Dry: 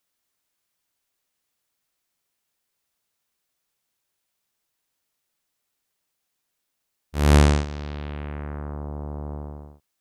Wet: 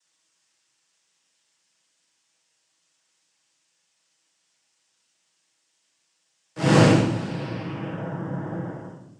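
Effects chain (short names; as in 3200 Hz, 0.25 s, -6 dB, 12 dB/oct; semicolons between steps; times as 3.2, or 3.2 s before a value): noise vocoder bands 8; reverb RT60 0.95 s, pre-delay 7 ms, DRR -4 dB; speed mistake 44.1 kHz file played as 48 kHz; gain -1.5 dB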